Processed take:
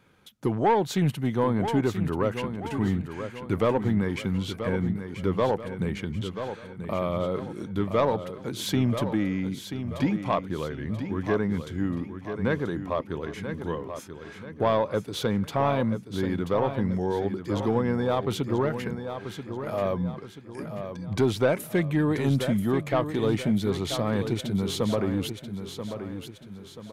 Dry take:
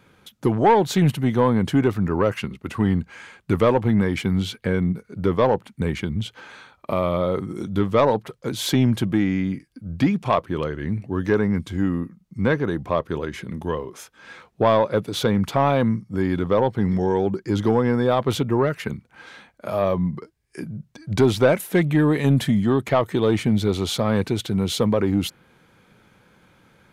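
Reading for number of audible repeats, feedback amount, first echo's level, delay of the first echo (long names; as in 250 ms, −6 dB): 4, 42%, −9.0 dB, 984 ms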